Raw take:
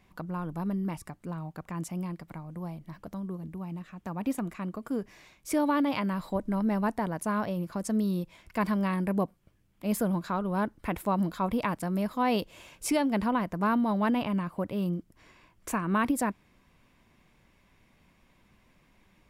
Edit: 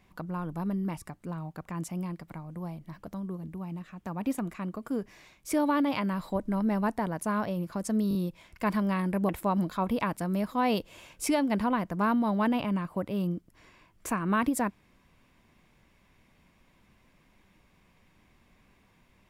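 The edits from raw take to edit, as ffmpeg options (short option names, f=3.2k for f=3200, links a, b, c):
-filter_complex "[0:a]asplit=5[a][b][c][d][e];[a]atrim=end=8.112[f];[b]atrim=start=8.088:end=8.112[g];[c]atrim=start=8.088:end=8.112[h];[d]atrim=start=8.088:end=9.232[i];[e]atrim=start=10.908[j];[f][g]acrossfade=d=0.004:c1=hsin:c2=hsin[k];[k][h]acrossfade=d=0.004:c1=hsin:c2=hsin[l];[l][i]acrossfade=d=0.004:c1=hsin:c2=hsin[m];[m][j]acrossfade=d=0.004:c1=hsin:c2=hsin"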